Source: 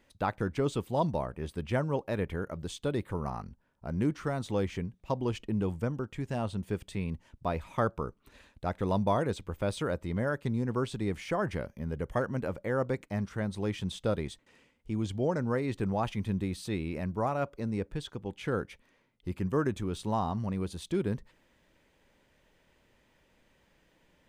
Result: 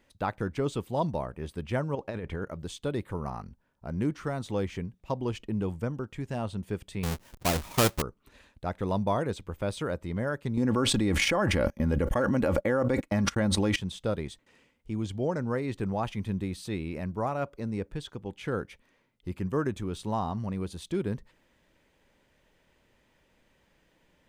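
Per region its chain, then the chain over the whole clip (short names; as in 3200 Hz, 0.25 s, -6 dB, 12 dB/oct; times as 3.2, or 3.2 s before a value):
1.95–2.48 LPF 7900 Hz + negative-ratio compressor -34 dBFS
7.03–8.02 half-waves squared off + high shelf 4100 Hz +7.5 dB
10.57–13.76 comb 3.6 ms, depth 41% + gate -43 dBFS, range -40 dB + fast leveller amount 100%
whole clip: dry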